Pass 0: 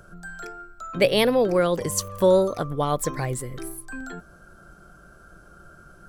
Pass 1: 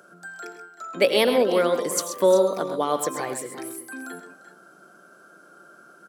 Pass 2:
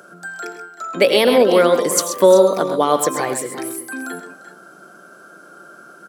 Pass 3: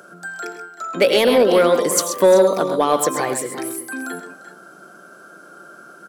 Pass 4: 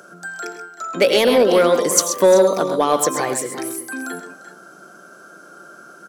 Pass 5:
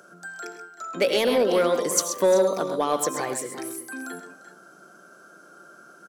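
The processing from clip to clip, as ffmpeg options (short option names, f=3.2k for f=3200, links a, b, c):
-af "highpass=f=230:w=0.5412,highpass=f=230:w=1.3066,aecho=1:1:85|105|130|348|349|381:0.141|0.2|0.299|0.141|0.133|0.168"
-af "alimiter=level_in=9dB:limit=-1dB:release=50:level=0:latency=1,volume=-1dB"
-af "asoftclip=type=tanh:threshold=-4dB"
-af "equalizer=f=6.1k:t=o:w=0.49:g=5.5"
-af "aecho=1:1:72:0.0794,volume=-7dB"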